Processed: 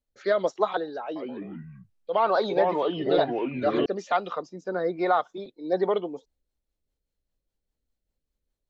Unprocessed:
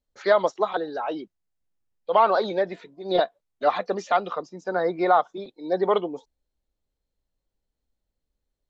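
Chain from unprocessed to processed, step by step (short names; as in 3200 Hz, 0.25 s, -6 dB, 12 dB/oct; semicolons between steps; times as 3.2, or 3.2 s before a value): rotary speaker horn 1.1 Hz, later 5 Hz, at 5.37; 1.03–3.86 echoes that change speed 0.127 s, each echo -4 st, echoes 3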